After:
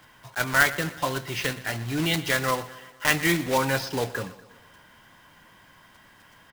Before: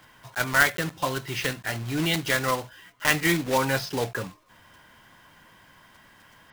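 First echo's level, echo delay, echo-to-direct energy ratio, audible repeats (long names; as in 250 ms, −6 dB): −17.5 dB, 121 ms, −16.0 dB, 4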